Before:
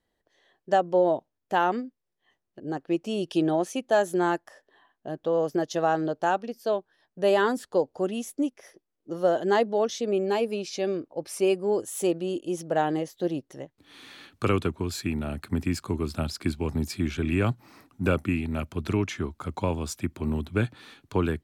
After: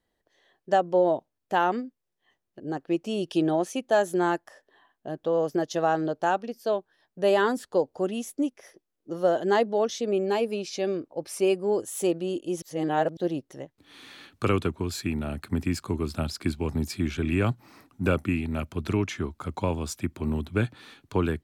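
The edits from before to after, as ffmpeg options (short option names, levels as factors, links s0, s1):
-filter_complex "[0:a]asplit=3[s0][s1][s2];[s0]atrim=end=12.622[s3];[s1]atrim=start=12.618:end=13.172,asetpts=PTS-STARTPTS,areverse[s4];[s2]atrim=start=13.168[s5];[s3][s4]acrossfade=d=0.004:c1=hsin:c2=hsin[s6];[s6][s5]acrossfade=d=0.004:c1=hsin:c2=hsin"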